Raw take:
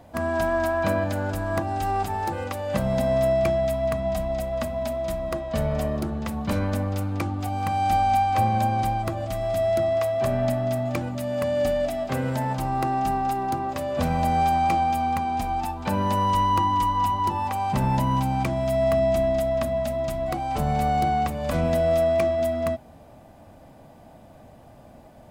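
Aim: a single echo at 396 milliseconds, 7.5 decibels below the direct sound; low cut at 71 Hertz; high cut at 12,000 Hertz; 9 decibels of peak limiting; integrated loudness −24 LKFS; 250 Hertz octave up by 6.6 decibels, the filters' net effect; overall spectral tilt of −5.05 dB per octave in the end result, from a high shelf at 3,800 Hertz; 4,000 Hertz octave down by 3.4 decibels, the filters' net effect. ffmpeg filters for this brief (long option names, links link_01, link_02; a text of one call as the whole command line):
ffmpeg -i in.wav -af "highpass=71,lowpass=12000,equalizer=frequency=250:width_type=o:gain=8,highshelf=frequency=3800:gain=3.5,equalizer=frequency=4000:width_type=o:gain=-7,alimiter=limit=-17.5dB:level=0:latency=1,aecho=1:1:396:0.422,volume=1dB" out.wav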